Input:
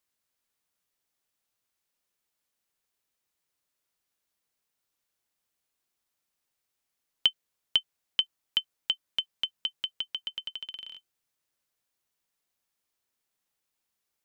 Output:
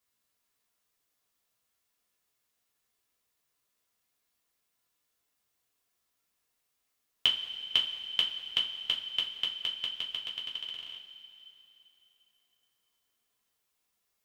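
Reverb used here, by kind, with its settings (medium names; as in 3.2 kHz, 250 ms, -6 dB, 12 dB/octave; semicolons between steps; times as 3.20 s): two-slope reverb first 0.24 s, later 3.2 s, from -18 dB, DRR -4 dB; trim -2 dB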